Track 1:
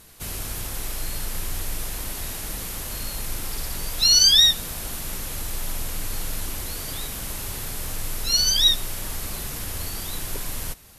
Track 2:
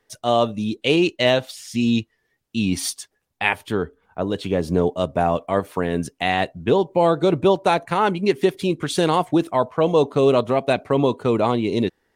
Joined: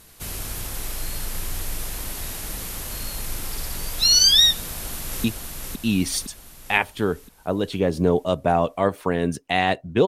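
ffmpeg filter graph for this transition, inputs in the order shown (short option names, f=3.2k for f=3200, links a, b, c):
-filter_complex "[0:a]apad=whole_dur=10.07,atrim=end=10.07,atrim=end=5.242[a];[1:a]atrim=start=1.948:end=6.78[b];[a][b]acrossfade=d=0.004:c1=hsin:c2=hsin,asplit=2[c][d];[d]afade=t=in:st=4.6:d=0.01,afade=t=out:st=5.24:d=0.01,aecho=0:1:510|1020|1530|2040|2550|3060|3570|4080:0.707946|0.38937|0.214154|0.117784|0.0647815|0.0356298|0.0195964|0.010778[e];[c][e]amix=inputs=2:normalize=0"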